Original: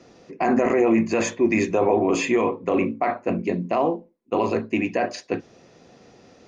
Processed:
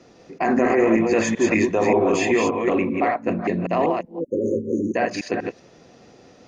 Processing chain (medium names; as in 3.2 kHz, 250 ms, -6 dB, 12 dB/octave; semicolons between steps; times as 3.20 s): chunks repeated in reverse 193 ms, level -3.5 dB; spectral selection erased 4.20–4.95 s, 570–5700 Hz; dynamic bell 1.8 kHz, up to +6 dB, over -49 dBFS, Q 5.9